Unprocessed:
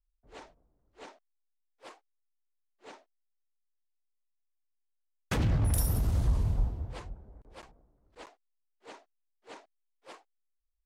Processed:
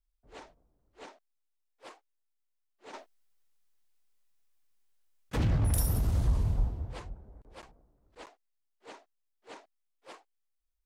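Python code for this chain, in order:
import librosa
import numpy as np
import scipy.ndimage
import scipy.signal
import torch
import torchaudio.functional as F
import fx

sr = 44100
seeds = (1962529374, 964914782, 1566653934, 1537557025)

y = fx.over_compress(x, sr, threshold_db=-47.0, ratio=-1.0, at=(2.93, 5.33), fade=0.02)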